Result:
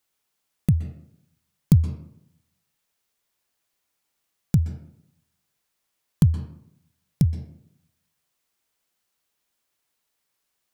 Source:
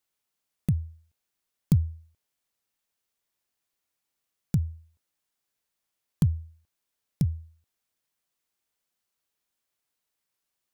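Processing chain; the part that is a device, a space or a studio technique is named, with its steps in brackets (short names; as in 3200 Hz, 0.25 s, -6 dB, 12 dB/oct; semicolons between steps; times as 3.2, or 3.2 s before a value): filtered reverb send (on a send: HPF 300 Hz 12 dB/oct + LPF 6400 Hz 12 dB/oct + reverb RT60 0.70 s, pre-delay 0.118 s, DRR 6.5 dB); on the sum: gain +5.5 dB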